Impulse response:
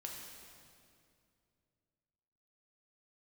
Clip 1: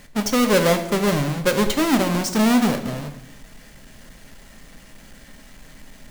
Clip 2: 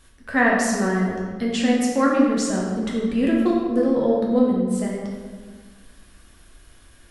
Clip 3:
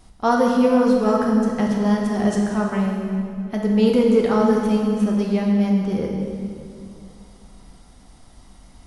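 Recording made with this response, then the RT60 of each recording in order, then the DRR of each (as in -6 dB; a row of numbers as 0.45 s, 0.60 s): 3; 0.85 s, 1.6 s, 2.4 s; 5.0 dB, -4.0 dB, -1.0 dB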